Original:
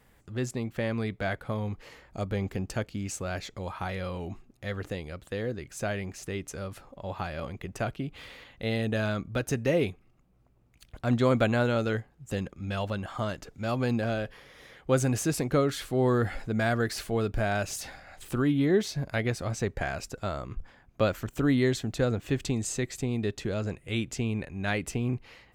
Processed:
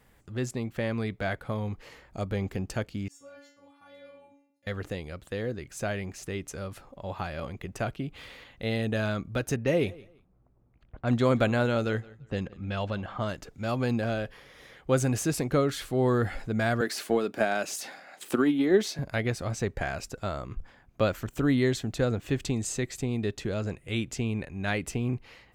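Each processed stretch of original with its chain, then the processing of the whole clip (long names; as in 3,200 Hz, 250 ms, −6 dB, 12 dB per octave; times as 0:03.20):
0:03.08–0:04.67: high-pass filter 110 Hz + stiff-string resonator 280 Hz, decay 0.62 s, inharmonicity 0.002
0:09.56–0:13.27: low-pass that shuts in the quiet parts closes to 1,200 Hz, open at −23.5 dBFS + repeating echo 171 ms, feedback 23%, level −22 dB
0:16.81–0:18.99: high-pass filter 210 Hz 24 dB per octave + transient designer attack +8 dB, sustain +2 dB
whole clip: no processing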